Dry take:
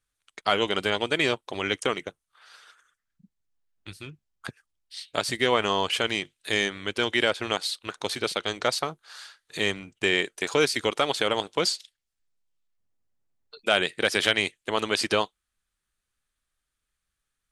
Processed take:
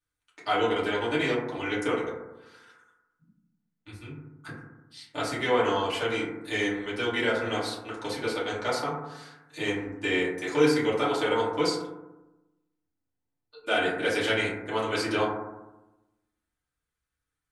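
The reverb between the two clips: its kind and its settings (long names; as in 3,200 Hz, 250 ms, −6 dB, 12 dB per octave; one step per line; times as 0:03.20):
feedback delay network reverb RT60 1 s, low-frequency decay 1.25×, high-frequency decay 0.25×, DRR −9.5 dB
level −12 dB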